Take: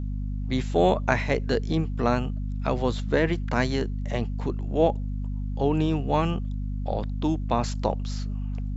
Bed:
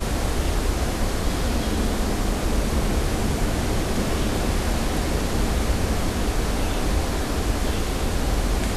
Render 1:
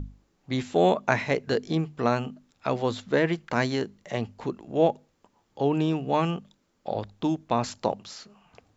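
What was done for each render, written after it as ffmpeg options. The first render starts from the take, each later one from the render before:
-af "bandreject=f=50:t=h:w=6,bandreject=f=100:t=h:w=6,bandreject=f=150:t=h:w=6,bandreject=f=200:t=h:w=6,bandreject=f=250:t=h:w=6"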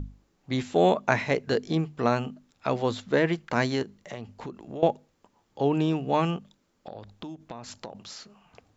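-filter_complex "[0:a]asettb=1/sr,asplit=3[a][b][c];[a]atrim=end=3.824[d];[b]atrim=start=3.82:end=4.83,asetpts=PTS-STARTPTS,afade=t=in:d=0.004:c=qsin,afade=t=out:st=1.006:d=0.004:c=qsin,acompressor=threshold=-33dB:ratio=5:attack=3.2:release=140:knee=1:detection=peak[e];[c]atrim=start=4.826[f];[d][e]acrossfade=d=0.004:c1=hsin:c2=qsin[g];[g][f]acrossfade=d=0.004:c1=qsin:c2=hsin,asettb=1/sr,asplit=3[h][i][j];[h]atrim=end=6.374[k];[i]atrim=start=6.37:end=7.95,asetpts=PTS-STARTPTS,afade=t=in:d=0.004:c=qsin,afade=t=out:st=1.576:d=0.004:c=qsin,acompressor=threshold=-36dB:ratio=6:attack=3.2:release=140:knee=1:detection=peak[l];[j]atrim=start=7.946[m];[k][l]acrossfade=d=0.004:c1=hsin:c2=qsin[n];[n][m]acrossfade=d=0.004:c1=qsin:c2=hsin"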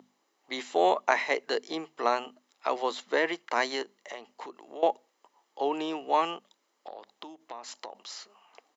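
-af "highpass=f=380:w=0.5412,highpass=f=380:w=1.3066,aecho=1:1:1:0.33"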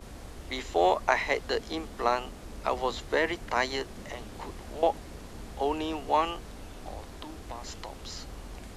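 -filter_complex "[1:a]volume=-20.5dB[a];[0:a][a]amix=inputs=2:normalize=0"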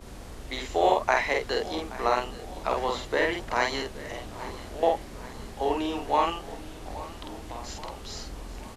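-filter_complex "[0:a]asplit=2[a][b];[b]adelay=48,volume=-2.5dB[c];[a][c]amix=inputs=2:normalize=0,aecho=1:1:825|1650|2475|3300|4125:0.133|0.0773|0.0449|0.026|0.0151"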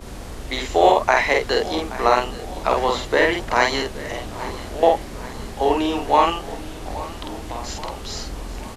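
-af "volume=8dB,alimiter=limit=-2dB:level=0:latency=1"

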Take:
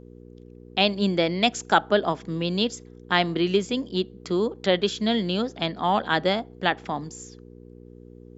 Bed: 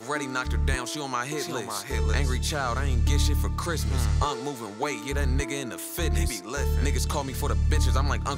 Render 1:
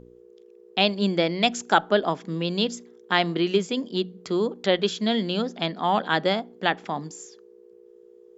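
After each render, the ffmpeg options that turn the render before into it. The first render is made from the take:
-af "bandreject=f=60:t=h:w=4,bandreject=f=120:t=h:w=4,bandreject=f=180:t=h:w=4,bandreject=f=240:t=h:w=4,bandreject=f=300:t=h:w=4"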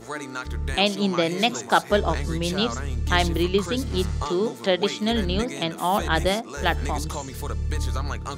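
-filter_complex "[1:a]volume=-3.5dB[a];[0:a][a]amix=inputs=2:normalize=0"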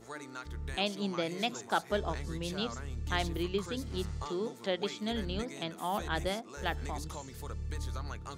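-af "volume=-11.5dB"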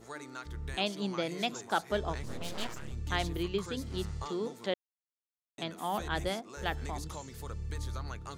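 -filter_complex "[0:a]asettb=1/sr,asplit=3[a][b][c];[a]atrim=end=2.234[d];[b]atrim=start=2.23:end=2.92,asetpts=PTS-STARTPTS,afade=t=in:d=0.004:c=qsin,afade=t=out:st=0.686:d=0.004:c=qsin,aeval=exprs='abs(val(0))':c=same[e];[c]atrim=start=2.916[f];[d][e]acrossfade=d=0.004:c1=hsin:c2=qsin[g];[g][f]acrossfade=d=0.004:c1=qsin:c2=hsin,asplit=3[h][i][j];[h]atrim=end=4.74,asetpts=PTS-STARTPTS,afade=t=out:st=4.736:d=0.004:c=hsin[k];[i]atrim=start=4.74:end=5.58,asetpts=PTS-STARTPTS,volume=0[l];[j]atrim=start=5.58,asetpts=PTS-STARTPTS,afade=t=in:d=0.004:c=hsin[m];[k][l][m]concat=n=3:v=0:a=1"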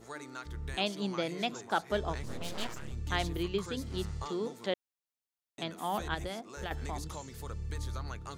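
-filter_complex "[0:a]asettb=1/sr,asplit=3[a][b][c];[a]atrim=end=1.314[d];[b]atrim=start=1.31:end=1.9,asetpts=PTS-STARTPTS,afade=t=in:d=0.004:c=qsin,afade=t=out:st=0.586:d=0.004:c=qsin,highshelf=f=5.8k:g=-6.5[e];[c]atrim=start=1.896[f];[d][e]acrossfade=d=0.004:c1=hsin:c2=qsin[g];[g][f]acrossfade=d=0.004:c1=qsin:c2=hsin,asettb=1/sr,asplit=3[h][i][j];[h]atrim=end=6.144[k];[i]atrim=start=6.14:end=6.71,asetpts=PTS-STARTPTS,afade=t=in:d=0.004:c=qsin,afade=t=out:st=0.566:d=0.004:c=qsin,acompressor=threshold=-33dB:ratio=6:attack=3.2:release=140:knee=1:detection=peak[l];[j]atrim=start=6.706[m];[k][l]acrossfade=d=0.004:c1=hsin:c2=qsin[n];[n][m]acrossfade=d=0.004:c1=qsin:c2=hsin"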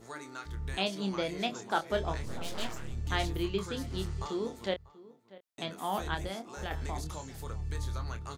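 -filter_complex "[0:a]asplit=2[a][b];[b]adelay=26,volume=-8dB[c];[a][c]amix=inputs=2:normalize=0,asplit=2[d][e];[e]adelay=641.4,volume=-19dB,highshelf=f=4k:g=-14.4[f];[d][f]amix=inputs=2:normalize=0"

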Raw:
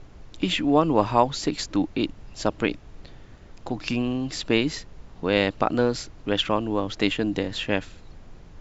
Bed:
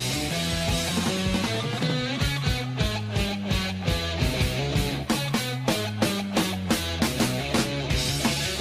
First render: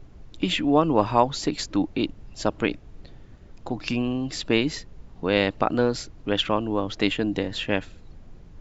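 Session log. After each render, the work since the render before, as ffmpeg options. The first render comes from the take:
-af "afftdn=nr=6:nf=-48"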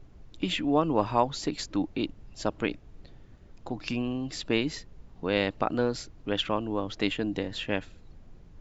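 -af "volume=-5dB"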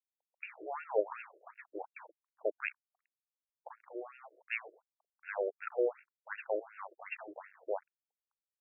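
-af "aeval=exprs='sgn(val(0))*max(abs(val(0))-0.0112,0)':c=same,afftfilt=real='re*between(b*sr/1024,450*pow(2000/450,0.5+0.5*sin(2*PI*2.7*pts/sr))/1.41,450*pow(2000/450,0.5+0.5*sin(2*PI*2.7*pts/sr))*1.41)':imag='im*between(b*sr/1024,450*pow(2000/450,0.5+0.5*sin(2*PI*2.7*pts/sr))/1.41,450*pow(2000/450,0.5+0.5*sin(2*PI*2.7*pts/sr))*1.41)':win_size=1024:overlap=0.75"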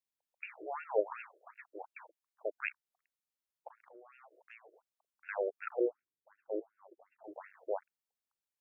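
-filter_complex "[0:a]asettb=1/sr,asplit=3[a][b][c];[a]atrim=end=1.274[d];[b]atrim=start=1.27:end=2.57,asetpts=PTS-STARTPTS,afade=t=in:d=0.004:c=qsin,afade=t=out:st=1.296:d=0.004:c=qsin,lowshelf=f=460:g=-9[e];[c]atrim=start=2.566[f];[d][e]acrossfade=d=0.004:c1=hsin:c2=qsin[g];[g][f]acrossfade=d=0.004:c1=qsin:c2=hsin,asettb=1/sr,asplit=3[h][i][j];[h]atrim=end=3.684[k];[i]atrim=start=3.68:end=5.29,asetpts=PTS-STARTPTS,afade=t=in:d=0.004:c=qsin,afade=t=out:st=1.606:d=0.004:c=qsin,acompressor=threshold=-57dB:ratio=3:attack=3.2:release=140:knee=1:detection=peak[l];[j]atrim=start=5.286[m];[k][l]acrossfade=d=0.004:c1=hsin:c2=qsin[n];[n][m]acrossfade=d=0.004:c1=qsin:c2=hsin,asplit=3[o][p][q];[o]afade=t=out:st=5.79:d=0.02[r];[p]lowpass=f=330:t=q:w=2.1,afade=t=in:st=5.79:d=0.02,afade=t=out:st=7.23:d=0.02[s];[q]afade=t=in:st=7.23:d=0.02[t];[r][s][t]amix=inputs=3:normalize=0"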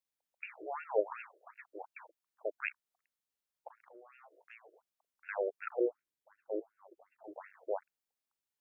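-filter_complex "[0:a]asettb=1/sr,asplit=3[a][b][c];[a]atrim=end=3.934[d];[b]atrim=start=3.93:end=4.55,asetpts=PTS-STARTPTS,afade=t=in:d=0.004:c=qsin,afade=t=out:st=0.616:d=0.004:c=qsin,asplit=2[e][f];[f]adelay=20,volume=-13dB[g];[e][g]amix=inputs=2:normalize=0,atrim=end_sample=27342[h];[c]atrim=start=4.546[i];[d][h]acrossfade=d=0.004:c1=hsin:c2=qsin[j];[j][i]acrossfade=d=0.004:c1=qsin:c2=hsin"

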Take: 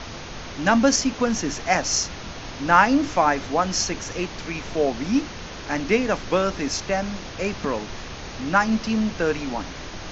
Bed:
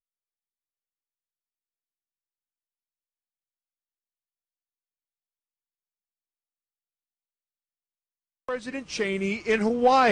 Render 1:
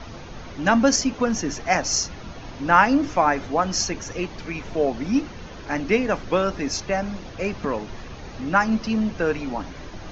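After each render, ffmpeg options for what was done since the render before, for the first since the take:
-af "afftdn=nr=9:nf=-36"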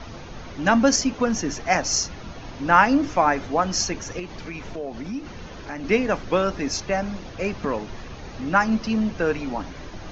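-filter_complex "[0:a]asettb=1/sr,asplit=3[a][b][c];[a]atrim=end=4.194[d];[b]atrim=start=4.19:end=5.84,asetpts=PTS-STARTPTS,afade=t=in:d=0.004:c=qsin,afade=t=out:st=1.646:d=0.004:c=qsin,acompressor=threshold=-30dB:ratio=3:attack=3.2:release=140:knee=1:detection=peak[e];[c]atrim=start=5.836[f];[d][e]acrossfade=d=0.004:c1=hsin:c2=qsin[g];[g][f]acrossfade=d=0.004:c1=qsin:c2=hsin"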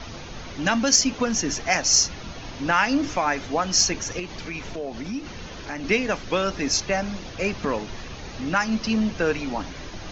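-filter_complex "[0:a]acrossover=split=2200[a][b];[a]alimiter=limit=-13dB:level=0:latency=1:release=288[c];[b]acontrast=41[d];[c][d]amix=inputs=2:normalize=0"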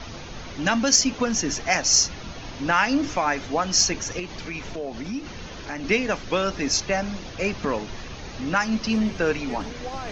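-filter_complex "[1:a]volume=-16dB[a];[0:a][a]amix=inputs=2:normalize=0"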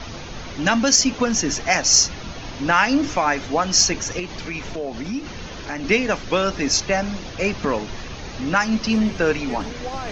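-af "volume=3.5dB,alimiter=limit=-3dB:level=0:latency=1"

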